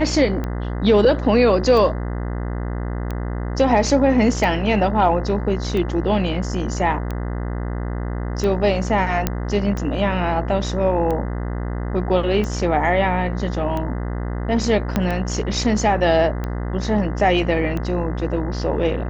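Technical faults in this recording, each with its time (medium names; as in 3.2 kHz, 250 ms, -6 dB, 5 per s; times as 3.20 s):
buzz 60 Hz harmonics 34 -25 dBFS
tick 45 rpm -14 dBFS
9.27 s: pop -4 dBFS
14.96 s: pop -6 dBFS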